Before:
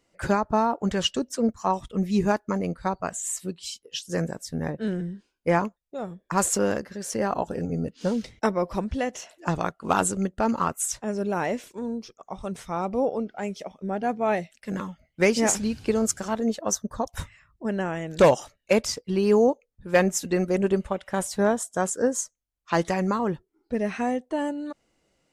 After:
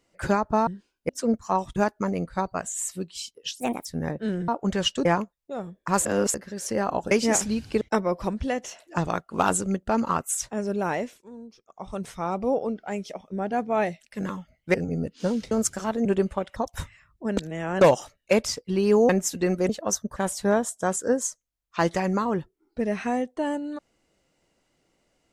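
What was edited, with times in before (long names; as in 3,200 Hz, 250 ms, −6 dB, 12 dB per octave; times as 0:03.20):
0:00.67–0:01.24: swap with 0:05.07–0:05.49
0:01.91–0:02.24: remove
0:04.08–0:04.44: play speed 143%
0:06.49–0:06.78: reverse
0:07.55–0:08.32: swap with 0:15.25–0:15.95
0:11.44–0:12.41: duck −11.5 dB, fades 0.28 s
0:16.49–0:16.96: swap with 0:20.59–0:21.10
0:17.77–0:18.21: reverse
0:19.49–0:19.99: remove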